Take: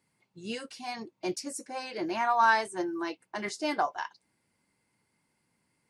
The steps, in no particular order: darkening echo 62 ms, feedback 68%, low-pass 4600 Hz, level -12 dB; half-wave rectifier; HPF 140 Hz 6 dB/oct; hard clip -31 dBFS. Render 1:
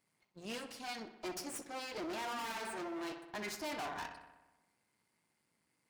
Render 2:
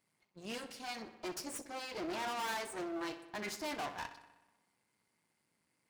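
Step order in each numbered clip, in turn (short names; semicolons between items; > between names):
half-wave rectifier > darkening echo > hard clip > HPF; hard clip > darkening echo > half-wave rectifier > HPF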